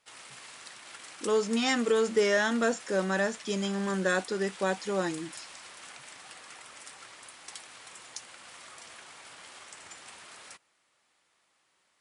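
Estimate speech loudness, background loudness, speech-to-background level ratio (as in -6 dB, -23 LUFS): -28.5 LUFS, -45.5 LUFS, 17.0 dB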